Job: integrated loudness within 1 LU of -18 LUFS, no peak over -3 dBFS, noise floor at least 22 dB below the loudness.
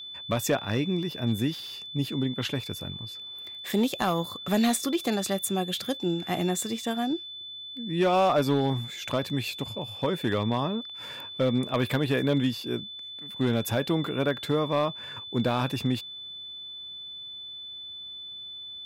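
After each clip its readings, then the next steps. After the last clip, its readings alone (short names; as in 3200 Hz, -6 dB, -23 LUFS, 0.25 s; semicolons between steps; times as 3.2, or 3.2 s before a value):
clipped 0.4%; flat tops at -17.0 dBFS; steady tone 3500 Hz; tone level -38 dBFS; loudness -29.0 LUFS; peak -17.0 dBFS; loudness target -18.0 LUFS
-> clip repair -17 dBFS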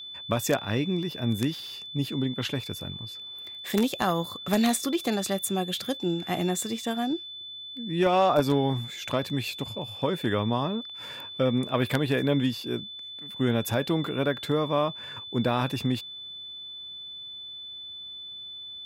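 clipped 0.0%; steady tone 3500 Hz; tone level -38 dBFS
-> notch 3500 Hz, Q 30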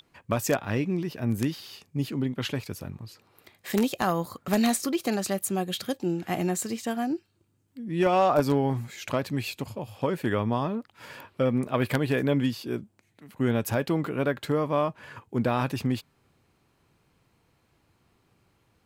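steady tone none; loudness -28.0 LUFS; peak -8.0 dBFS; loudness target -18.0 LUFS
-> gain +10 dB; limiter -3 dBFS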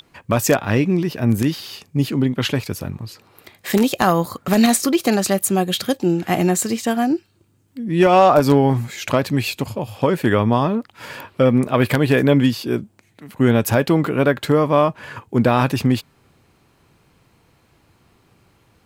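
loudness -18.5 LUFS; peak -3.0 dBFS; noise floor -59 dBFS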